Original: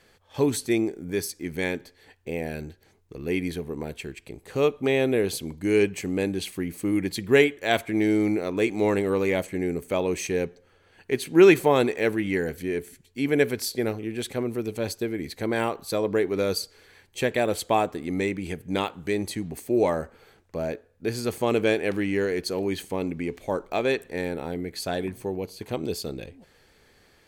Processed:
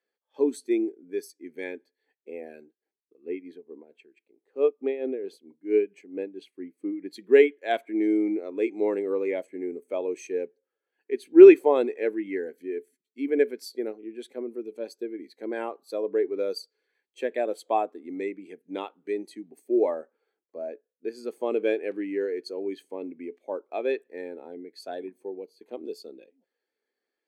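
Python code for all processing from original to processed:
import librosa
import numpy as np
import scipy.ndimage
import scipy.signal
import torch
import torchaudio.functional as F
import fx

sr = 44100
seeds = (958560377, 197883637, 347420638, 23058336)

y = fx.chain(x, sr, fx.peak_eq(hz=11000.0, db=-7.0, octaves=2.2),
    fx.tremolo(hz=4.5, depth=0.58), at=(2.64, 7.1))
y = scipy.signal.sosfilt(scipy.signal.butter(4, 250.0, 'highpass', fs=sr, output='sos'), y)
y = fx.spectral_expand(y, sr, expansion=1.5)
y = y * librosa.db_to_amplitude(3.0)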